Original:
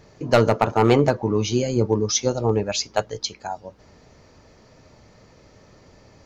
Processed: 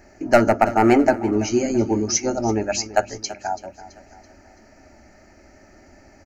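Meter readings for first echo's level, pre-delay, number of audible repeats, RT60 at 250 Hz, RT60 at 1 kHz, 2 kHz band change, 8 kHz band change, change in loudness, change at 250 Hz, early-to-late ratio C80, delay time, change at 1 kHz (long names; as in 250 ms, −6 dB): −16.5 dB, no reverb audible, 3, no reverb audible, no reverb audible, +4.0 dB, can't be measured, +1.0 dB, +3.5 dB, no reverb audible, 332 ms, +3.5 dB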